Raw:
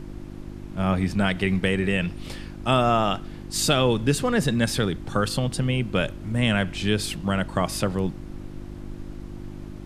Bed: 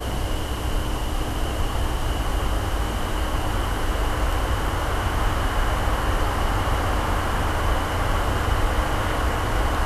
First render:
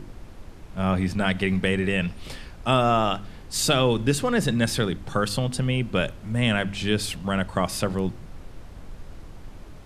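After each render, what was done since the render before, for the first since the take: de-hum 50 Hz, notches 7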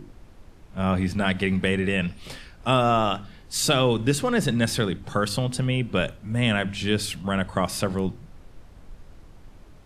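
noise print and reduce 6 dB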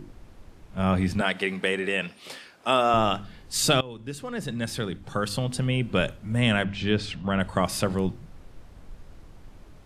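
1.21–2.94 HPF 320 Hz; 3.81–5.99 fade in linear, from -21 dB; 6.64–7.4 air absorption 130 m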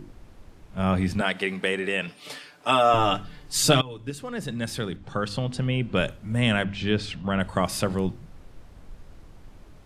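2.07–4.1 comb 6.8 ms, depth 73%; 4.96–5.97 air absorption 66 m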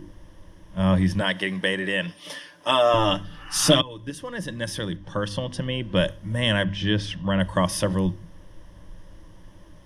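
3.31–3.71 spectral repair 750–3000 Hz both; ripple EQ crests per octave 1.2, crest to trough 11 dB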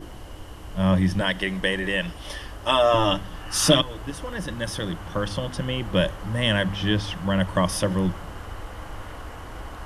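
add bed -15 dB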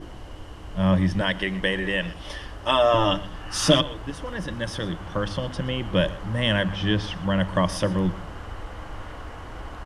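air absorption 51 m; echo 0.121 s -18.5 dB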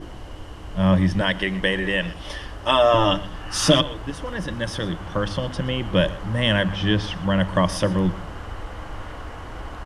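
gain +2.5 dB; limiter -3 dBFS, peak gain reduction 1.5 dB

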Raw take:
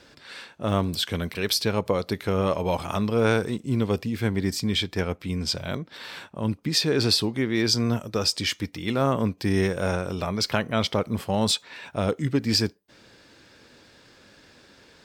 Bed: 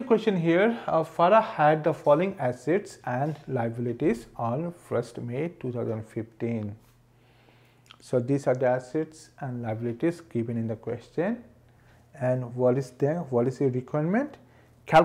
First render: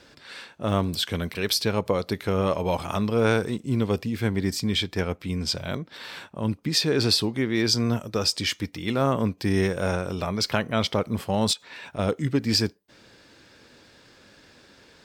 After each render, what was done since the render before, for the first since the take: 11.53–11.99 compressor, threshold -33 dBFS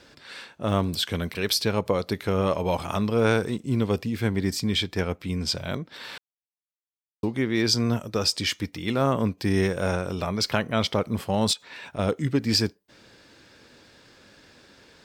6.18–7.23 mute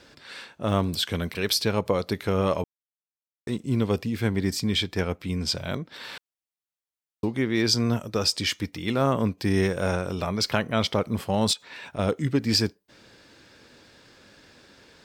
2.64–3.47 mute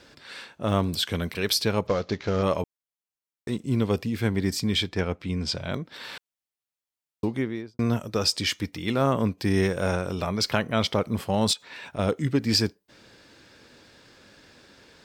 1.87–2.43 CVSD 32 kbps; 4.89–5.74 air absorption 53 m; 7.27–7.79 studio fade out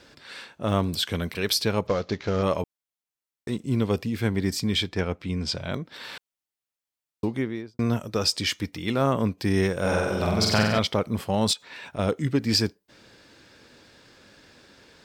9.8–10.79 flutter echo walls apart 8 m, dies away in 1.1 s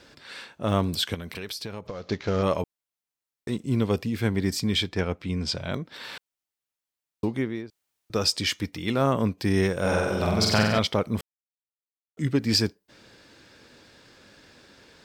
1.14–2.09 compressor 8:1, threshold -31 dBFS; 7.7–8.1 room tone; 11.21–12.17 mute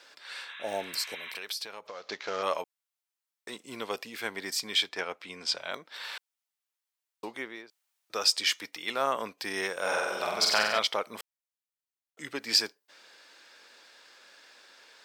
HPF 730 Hz 12 dB/oct; 0.49–1.3 spectral repair 920–4000 Hz both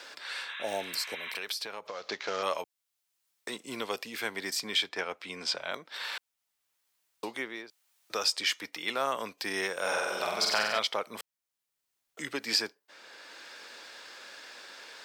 three-band squash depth 40%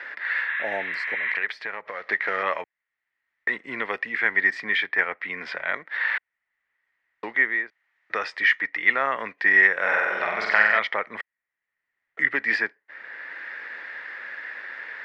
in parallel at -10 dB: bit-crush 8-bit; on the sum: synth low-pass 1900 Hz, resonance Q 9.6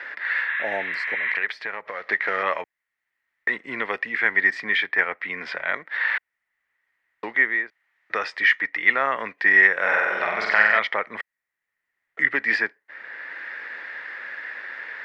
gain +1.5 dB; limiter -2 dBFS, peak gain reduction 2 dB

